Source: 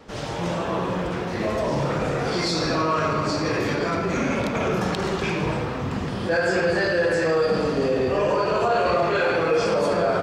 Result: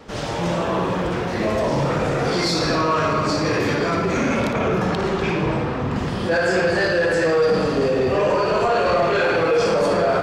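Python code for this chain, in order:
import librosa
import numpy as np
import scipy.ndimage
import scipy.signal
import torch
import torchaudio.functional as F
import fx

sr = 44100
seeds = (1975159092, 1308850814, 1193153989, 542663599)

p1 = fx.high_shelf(x, sr, hz=4600.0, db=-9.5, at=(4.52, 5.96))
p2 = p1 + fx.room_flutter(p1, sr, wall_m=10.1, rt60_s=0.33, dry=0)
p3 = 10.0 ** (-15.0 / 20.0) * np.tanh(p2 / 10.0 ** (-15.0 / 20.0))
y = p3 * 10.0 ** (4.0 / 20.0)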